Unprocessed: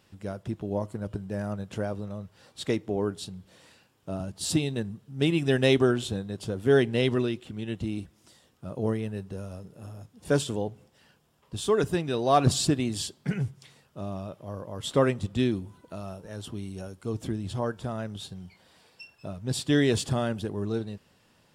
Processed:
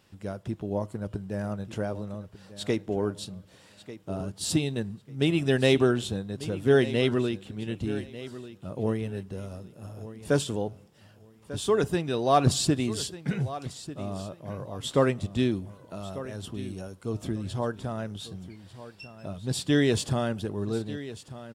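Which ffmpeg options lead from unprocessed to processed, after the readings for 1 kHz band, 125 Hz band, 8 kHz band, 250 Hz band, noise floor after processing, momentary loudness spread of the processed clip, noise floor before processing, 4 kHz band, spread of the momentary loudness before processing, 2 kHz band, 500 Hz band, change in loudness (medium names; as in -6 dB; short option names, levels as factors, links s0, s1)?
0.0 dB, 0.0 dB, 0.0 dB, 0.0 dB, -56 dBFS, 18 LU, -64 dBFS, 0.0 dB, 18 LU, 0.0 dB, 0.0 dB, 0.0 dB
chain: -af "aecho=1:1:1194|2388:0.178|0.0373"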